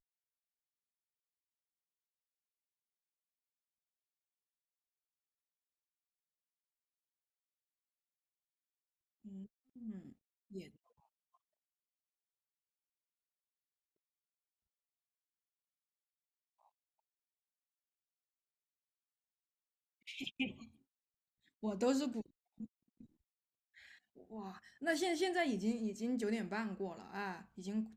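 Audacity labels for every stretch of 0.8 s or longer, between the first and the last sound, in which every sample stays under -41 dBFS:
10.610000	20.080000	silence
20.510000	21.640000	silence
22.640000	24.360000	silence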